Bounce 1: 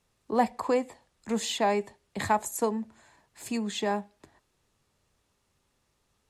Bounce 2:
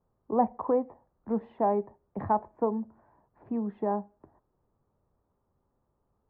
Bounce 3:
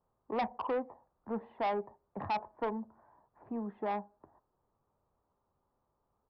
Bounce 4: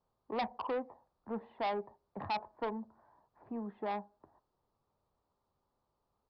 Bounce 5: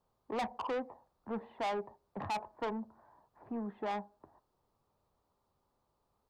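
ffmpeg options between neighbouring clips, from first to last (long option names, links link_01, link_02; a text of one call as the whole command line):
ffmpeg -i in.wav -af "lowpass=frequency=1100:width=0.5412,lowpass=frequency=1100:width=1.3066" out.wav
ffmpeg -i in.wav -af "equalizer=frequency=1000:width_type=o:width=2:gain=8.5,aresample=11025,asoftclip=type=tanh:threshold=-20.5dB,aresample=44100,volume=-7.5dB" out.wav
ffmpeg -i in.wav -af "lowpass=frequency=4500:width_type=q:width=2.4,volume=-2.5dB" out.wav
ffmpeg -i in.wav -af "asoftclip=type=tanh:threshold=-34dB,volume=3dB" out.wav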